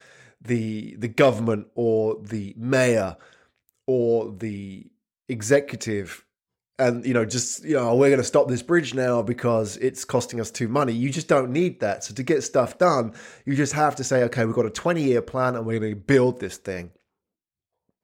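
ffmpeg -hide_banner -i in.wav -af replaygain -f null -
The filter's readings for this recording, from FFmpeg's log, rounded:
track_gain = +2.7 dB
track_peak = 0.372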